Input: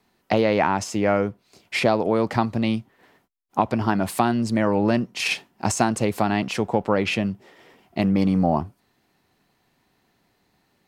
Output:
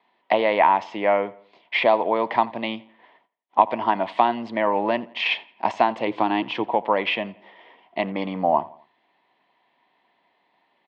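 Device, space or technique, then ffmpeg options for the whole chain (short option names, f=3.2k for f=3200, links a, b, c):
phone earpiece: -filter_complex "[0:a]asettb=1/sr,asplit=3[a][b][c];[a]atrim=end=6.074[d];[b]atrim=start=6.07:end=6.64,asetpts=PTS-STARTPTS,afade=t=in:d=0.004:c=qsin,afade=t=out:st=0.566:d=0.004:c=qsin,equalizer=f=125:t=o:w=0.33:g=12,equalizer=f=315:t=o:w=0.33:g=10,equalizer=f=630:t=o:w=0.33:g=-7,equalizer=f=2k:t=o:w=0.33:g=-6[e];[c]atrim=start=6.636[f];[d][e]acrossfade=d=0.004:c1=hsin:c2=qsin[g];[g][f]acrossfade=d=0.004:c1=qsin:c2=hsin,highpass=350,equalizer=f=410:t=q:w=4:g=-3,equalizer=f=650:t=q:w=4:g=5,equalizer=f=970:t=q:w=4:g=10,equalizer=f=1.4k:t=q:w=4:g=-7,equalizer=f=2k:t=q:w=4:g=6,equalizer=f=3.3k:t=q:w=4:g=7,lowpass=f=3.4k:w=0.5412,lowpass=f=3.4k:w=1.3066,asplit=2[h][i];[i]adelay=85,lowpass=f=3.8k:p=1,volume=-21dB,asplit=2[j][k];[k]adelay=85,lowpass=f=3.8k:p=1,volume=0.45,asplit=2[l][m];[m]adelay=85,lowpass=f=3.8k:p=1,volume=0.45[n];[h][j][l][n]amix=inputs=4:normalize=0,volume=-1dB"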